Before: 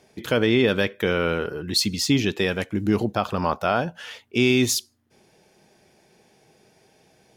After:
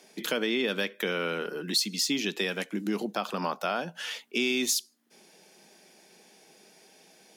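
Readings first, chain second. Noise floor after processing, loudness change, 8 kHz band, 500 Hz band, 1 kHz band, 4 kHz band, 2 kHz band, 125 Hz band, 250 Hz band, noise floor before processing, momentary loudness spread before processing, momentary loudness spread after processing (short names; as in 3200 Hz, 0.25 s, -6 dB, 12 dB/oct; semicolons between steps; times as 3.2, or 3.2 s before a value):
-59 dBFS, -6.5 dB, -2.5 dB, -8.5 dB, -7.0 dB, -3.5 dB, -5.0 dB, -15.5 dB, -9.0 dB, -61 dBFS, 7 LU, 6 LU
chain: steep high-pass 170 Hz 48 dB/oct; high shelf 2200 Hz +8.5 dB; compressor 2:1, threshold -30 dBFS, peak gain reduction 11 dB; gain -1.5 dB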